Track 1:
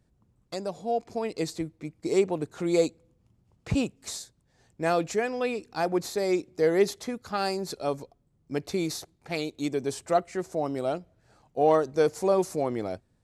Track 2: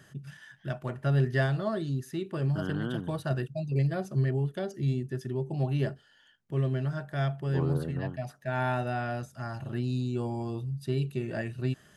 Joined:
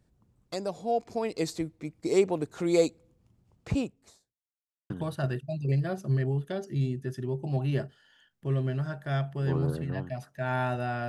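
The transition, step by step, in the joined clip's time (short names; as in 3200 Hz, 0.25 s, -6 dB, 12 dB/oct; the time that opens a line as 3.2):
track 1
3.45–4.42 studio fade out
4.42–4.9 mute
4.9 switch to track 2 from 2.97 s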